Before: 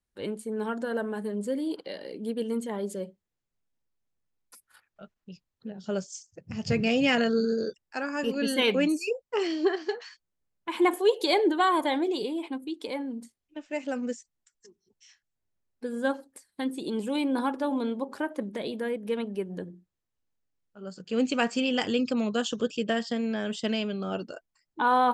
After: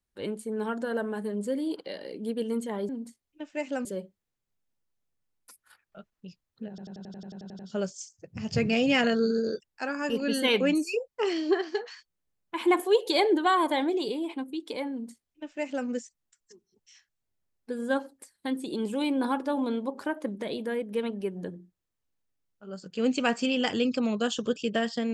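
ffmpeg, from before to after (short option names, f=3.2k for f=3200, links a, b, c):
-filter_complex "[0:a]asplit=13[a][b][c][d][e][f][g][h][i][j][k][l][m];[a]atrim=end=2.892[n];[b]atrim=start=13.048:end=14.012[o];[c]atrim=start=2.888:end=5.822[p];[d]atrim=start=5.728:end=5.822[q];[e]atrim=start=5.728:end=5.822[r];[f]atrim=start=5.728:end=5.822[s];[g]atrim=start=5.728:end=5.822[t];[h]atrim=start=5.728:end=5.822[u];[i]atrim=start=5.728:end=5.822[v];[j]atrim=start=5.728:end=5.822[w];[k]atrim=start=5.728:end=5.822[x];[l]atrim=start=5.728:end=5.822[y];[m]atrim=start=5.728[z];[n][o]acrossfade=d=0.004:c1=hsin:c2=hsin[aa];[aa][p]acrossfade=d=0.004:c1=hsin:c2=hsin[ab];[ab][q]acrossfade=d=0.004:c1=hsin:c2=hsin[ac];[ac][r]acrossfade=d=0.004:c1=hsin:c2=hsin[ad];[ad][s]acrossfade=d=0.004:c1=hsin:c2=hsin[ae];[ae][t]acrossfade=d=0.004:c1=hsin:c2=hsin[af];[af][u]acrossfade=d=0.004:c1=hsin:c2=hsin[ag];[ag][v]acrossfade=d=0.004:c1=hsin:c2=hsin[ah];[ah][w]acrossfade=d=0.004:c1=hsin:c2=hsin[ai];[ai][x]acrossfade=d=0.004:c1=hsin:c2=hsin[aj];[aj][y]acrossfade=d=0.004:c1=hsin:c2=hsin[ak];[ak][z]acrossfade=d=0.004:c1=hsin:c2=hsin"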